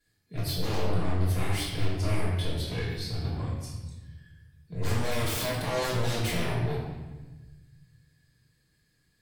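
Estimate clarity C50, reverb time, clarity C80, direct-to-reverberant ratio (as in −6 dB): 0.5 dB, 1.2 s, 3.5 dB, −9.0 dB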